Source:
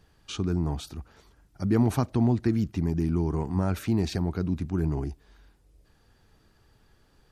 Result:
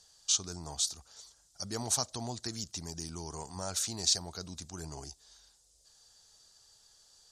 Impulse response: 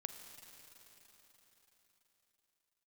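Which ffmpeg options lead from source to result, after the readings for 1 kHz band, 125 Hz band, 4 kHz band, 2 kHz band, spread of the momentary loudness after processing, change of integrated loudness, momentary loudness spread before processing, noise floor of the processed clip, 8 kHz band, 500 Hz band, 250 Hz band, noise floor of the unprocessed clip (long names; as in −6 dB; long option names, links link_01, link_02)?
−6.0 dB, −17.5 dB, +9.0 dB, −7.5 dB, 15 LU, −6.5 dB, 11 LU, −67 dBFS, +15.5 dB, −12.0 dB, −18.5 dB, −63 dBFS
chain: -af "lowpass=frequency=7100:width_type=q:width=2,aexciter=amount=7.6:drive=4.9:freq=3500,lowshelf=frequency=430:width_type=q:width=1.5:gain=-9,volume=-8dB"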